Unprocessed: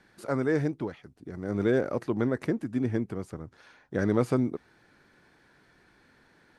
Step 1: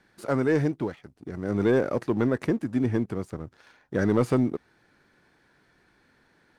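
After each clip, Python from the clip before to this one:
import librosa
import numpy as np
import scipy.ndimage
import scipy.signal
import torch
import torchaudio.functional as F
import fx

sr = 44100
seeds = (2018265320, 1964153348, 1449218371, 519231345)

y = fx.leveller(x, sr, passes=1)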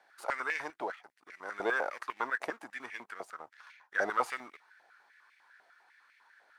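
y = fx.filter_held_highpass(x, sr, hz=10.0, low_hz=700.0, high_hz=2200.0)
y = y * 10.0 ** (-4.0 / 20.0)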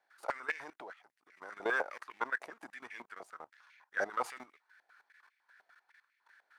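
y = fx.level_steps(x, sr, step_db=16)
y = y * 10.0 ** (1.0 / 20.0)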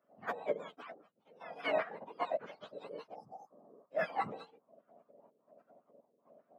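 y = fx.octave_mirror(x, sr, pivot_hz=1000.0)
y = scipy.signal.sosfilt(scipy.signal.butter(4, 190.0, 'highpass', fs=sr, output='sos'), y)
y = fx.spec_repair(y, sr, seeds[0], start_s=3.17, length_s=0.66, low_hz=900.0, high_hz=4600.0, source='after')
y = y * 10.0 ** (2.5 / 20.0)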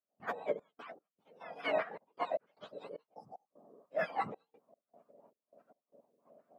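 y = fx.step_gate(x, sr, bpm=76, pattern='.xx.x.xxxx.x', floor_db=-24.0, edge_ms=4.5)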